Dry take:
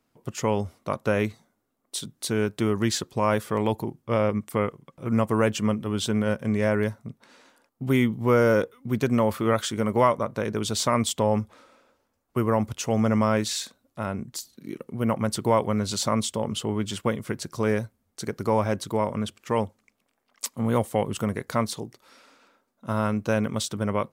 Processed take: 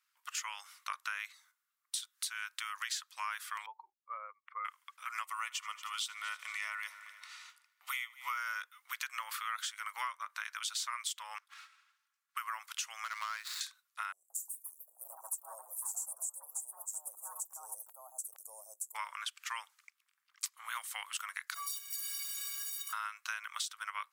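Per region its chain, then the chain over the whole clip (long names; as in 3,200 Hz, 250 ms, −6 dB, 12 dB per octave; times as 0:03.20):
0:03.66–0:04.65: expanding power law on the bin magnitudes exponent 2.1 + low-pass filter 2,300 Hz 24 dB per octave + one half of a high-frequency compander decoder only
0:05.23–0:08.38: Butterworth band-reject 1,600 Hz, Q 5.9 + echo machine with several playback heads 77 ms, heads first and third, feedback 58%, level −23 dB
0:11.38–0:12.37: lower of the sound and its delayed copy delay 3.6 ms + high-shelf EQ 8,500 Hz −5.5 dB + downward compressor 4 to 1, threshold −48 dBFS
0:13.04–0:13.61: running median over 15 samples + parametric band 1,000 Hz −3 dB 2.2 octaves
0:14.12–0:18.95: Chebyshev band-stop filter 630–7,400 Hz, order 4 + delay with pitch and tempo change per echo 180 ms, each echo +3 semitones, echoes 3, each echo −6 dB
0:21.54–0:22.93: spike at every zero crossing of −17 dBFS + notch filter 1,700 Hz, Q 18 + stiff-string resonator 340 Hz, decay 0.29 s, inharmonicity 0.03
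whole clip: noise gate −54 dBFS, range −8 dB; Butterworth high-pass 1,200 Hz 36 dB per octave; downward compressor 5 to 1, threshold −43 dBFS; level +6 dB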